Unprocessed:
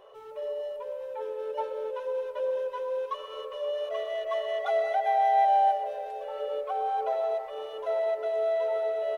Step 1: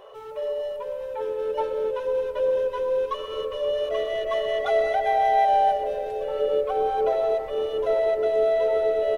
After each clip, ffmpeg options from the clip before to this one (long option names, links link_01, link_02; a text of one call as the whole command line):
ffmpeg -i in.wav -af "asubboost=boost=10.5:cutoff=250,volume=7dB" out.wav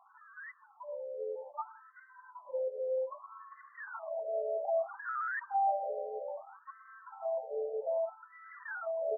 ffmpeg -i in.wav -af "acrusher=samples=12:mix=1:aa=0.000001:lfo=1:lforange=19.2:lforate=0.82,afftfilt=real='re*between(b*sr/1024,560*pow(1500/560,0.5+0.5*sin(2*PI*0.62*pts/sr))/1.41,560*pow(1500/560,0.5+0.5*sin(2*PI*0.62*pts/sr))*1.41)':imag='im*between(b*sr/1024,560*pow(1500/560,0.5+0.5*sin(2*PI*0.62*pts/sr))/1.41,560*pow(1500/560,0.5+0.5*sin(2*PI*0.62*pts/sr))*1.41)':win_size=1024:overlap=0.75,volume=-8.5dB" out.wav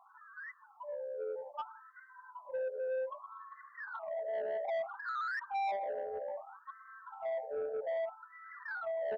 ffmpeg -i in.wav -af "asoftclip=type=tanh:threshold=-32.5dB,volume=1dB" out.wav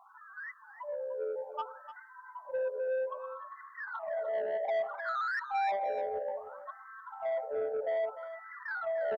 ffmpeg -i in.wav -af "aecho=1:1:299:0.251,volume=3.5dB" out.wav